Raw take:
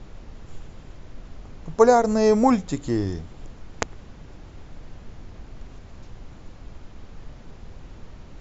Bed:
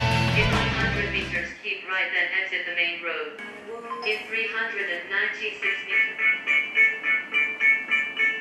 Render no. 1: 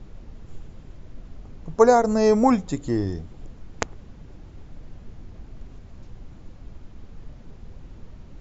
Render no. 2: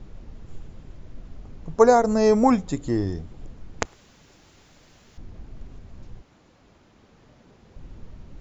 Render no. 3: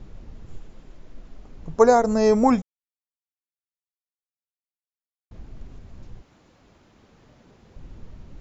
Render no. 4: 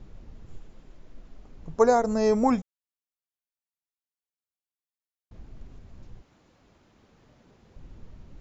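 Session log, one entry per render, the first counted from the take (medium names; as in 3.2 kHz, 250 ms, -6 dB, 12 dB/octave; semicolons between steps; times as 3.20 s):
noise reduction 6 dB, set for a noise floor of -44 dBFS
3.85–5.18 s: tilt EQ +4 dB/octave; 6.20–7.75 s: high-pass 660 Hz -> 290 Hz 6 dB/octave
0.57–1.58 s: peaking EQ 88 Hz -11.5 dB 1.6 oct; 2.62–5.31 s: mute
trim -4.5 dB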